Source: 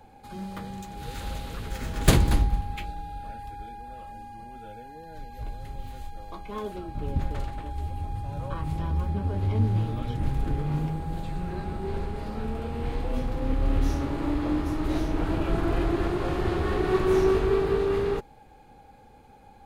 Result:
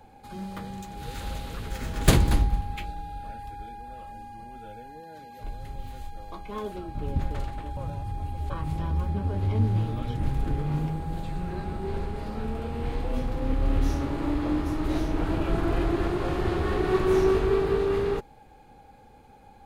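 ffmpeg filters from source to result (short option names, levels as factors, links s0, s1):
-filter_complex "[0:a]asettb=1/sr,asplit=3[s0][s1][s2];[s0]atrim=end=5.004[s3];[s1]atrim=start=5:end=5.44,asetpts=PTS-STARTPTS,afade=t=in:d=0.004:c=qsin,afade=t=out:st=0.436:d=0.004:c=qsin,highpass=170[s4];[s2]atrim=start=5.436[s5];[s3][s4]acrossfade=d=0.004:c1=hsin:c2=qsin[s6];[s6][s5]acrossfade=d=0.004:c1=qsin:c2=hsin,asplit=3[s7][s8][s9];[s7]atrim=end=7.772[s10];[s8]atrim=start=7.768:end=8.502,asetpts=PTS-STARTPTS,areverse[s11];[s9]atrim=start=8.498[s12];[s10][s11]acrossfade=d=0.004:c1=hsin:c2=hsin[s13];[s13][s12]acrossfade=d=0.004:c1=hsin:c2=hsin"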